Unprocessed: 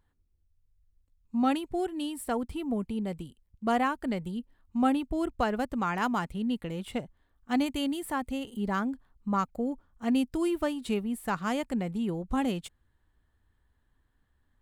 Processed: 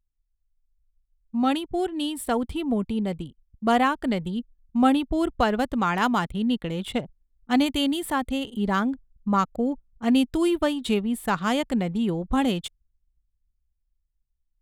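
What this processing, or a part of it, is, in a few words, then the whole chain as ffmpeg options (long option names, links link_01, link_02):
voice memo with heavy noise removal: -af "adynamicequalizer=threshold=0.00126:dfrequency=3500:dqfactor=3.4:tfrequency=3500:tqfactor=3.4:attack=5:release=100:ratio=0.375:range=3.5:mode=boostabove:tftype=bell,anlmdn=0.00398,dynaudnorm=framelen=100:gausssize=31:maxgain=6dB"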